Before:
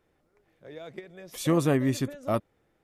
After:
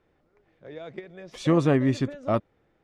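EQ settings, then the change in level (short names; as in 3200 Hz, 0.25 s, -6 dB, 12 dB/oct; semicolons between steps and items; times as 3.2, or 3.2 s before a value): air absorption 120 m; +3.0 dB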